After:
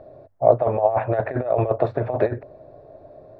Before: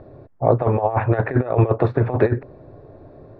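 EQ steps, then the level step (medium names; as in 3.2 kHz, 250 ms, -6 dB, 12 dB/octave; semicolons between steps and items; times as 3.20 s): peaking EQ 630 Hz +14 dB 0.61 oct; treble shelf 2.8 kHz +9 dB; hum notches 50/100 Hz; -8.5 dB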